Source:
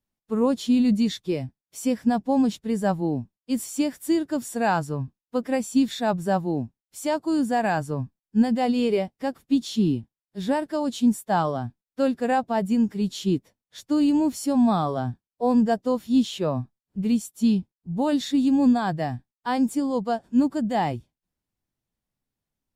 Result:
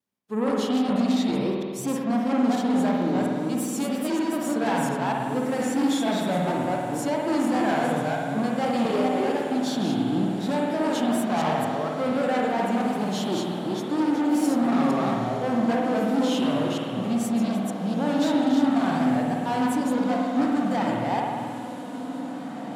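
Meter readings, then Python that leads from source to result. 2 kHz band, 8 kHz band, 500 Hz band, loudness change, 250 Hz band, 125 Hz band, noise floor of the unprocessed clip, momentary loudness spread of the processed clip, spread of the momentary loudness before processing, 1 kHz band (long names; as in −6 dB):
+3.0 dB, +0.5 dB, +1.0 dB, 0.0 dB, −0.5 dB, −1.0 dB, below −85 dBFS, 5 LU, 10 LU, +1.5 dB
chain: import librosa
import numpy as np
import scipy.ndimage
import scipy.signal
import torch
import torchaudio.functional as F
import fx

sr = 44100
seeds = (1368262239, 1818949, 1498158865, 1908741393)

p1 = fx.reverse_delay(x, sr, ms=233, wet_db=-2)
p2 = 10.0 ** (-22.5 / 20.0) * np.tanh(p1 / 10.0 ** (-22.5 / 20.0))
p3 = fx.vibrato(p2, sr, rate_hz=2.8, depth_cents=85.0)
p4 = scipy.signal.sosfilt(scipy.signal.butter(2, 160.0, 'highpass', fs=sr, output='sos'), p3)
p5 = p4 + fx.echo_diffused(p4, sr, ms=1991, feedback_pct=63, wet_db=-12.0, dry=0)
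y = fx.rev_spring(p5, sr, rt60_s=1.8, pass_ms=(51,), chirp_ms=75, drr_db=-1.0)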